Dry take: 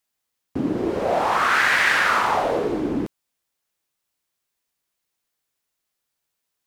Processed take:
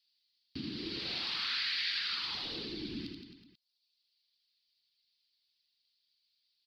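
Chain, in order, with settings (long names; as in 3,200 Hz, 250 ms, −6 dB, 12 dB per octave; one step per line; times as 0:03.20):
first-order pre-emphasis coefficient 0.9
reverb reduction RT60 1.1 s
drawn EQ curve 210 Hz 0 dB, 340 Hz −4 dB, 610 Hz −24 dB, 4,600 Hz +13 dB, 6,900 Hz −27 dB
downward compressor 4 to 1, threshold −43 dBFS, peak gain reduction 14 dB
reverse bouncing-ball delay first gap 80 ms, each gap 1.1×, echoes 5
level +6.5 dB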